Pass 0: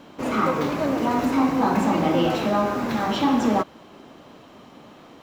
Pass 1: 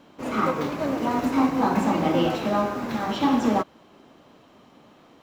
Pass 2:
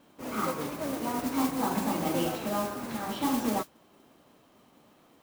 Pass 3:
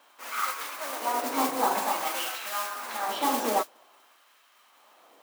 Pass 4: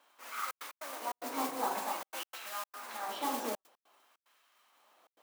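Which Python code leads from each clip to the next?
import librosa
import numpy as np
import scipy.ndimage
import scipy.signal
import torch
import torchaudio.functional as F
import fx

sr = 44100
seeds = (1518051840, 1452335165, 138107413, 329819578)

y1 = fx.upward_expand(x, sr, threshold_db=-30.0, expansion=1.5)
y2 = fx.mod_noise(y1, sr, seeds[0], snr_db=12)
y2 = F.gain(torch.from_numpy(y2), -7.5).numpy()
y3 = fx.filter_lfo_highpass(y2, sr, shape='sine', hz=0.51, low_hz=480.0, high_hz=1500.0, q=1.1)
y3 = F.gain(torch.from_numpy(y3), 5.0).numpy()
y4 = fx.step_gate(y3, sr, bpm=148, pattern='xxxxx.x.xxx.xxx', floor_db=-60.0, edge_ms=4.5)
y4 = F.gain(torch.from_numpy(y4), -8.5).numpy()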